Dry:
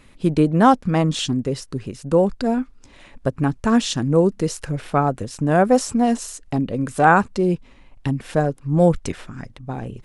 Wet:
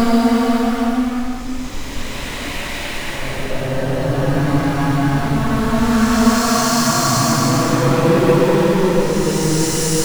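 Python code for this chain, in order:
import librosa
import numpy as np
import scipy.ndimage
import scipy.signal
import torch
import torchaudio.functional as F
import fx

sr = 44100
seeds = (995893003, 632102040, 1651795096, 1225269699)

y = fx.spec_repair(x, sr, seeds[0], start_s=3.78, length_s=0.34, low_hz=630.0, high_hz=4100.0, source='both')
y = fx.power_curve(y, sr, exponent=0.35)
y = fx.paulstretch(y, sr, seeds[1], factor=4.8, window_s=0.5, from_s=2.44)
y = F.gain(torch.from_numpy(y), -5.0).numpy()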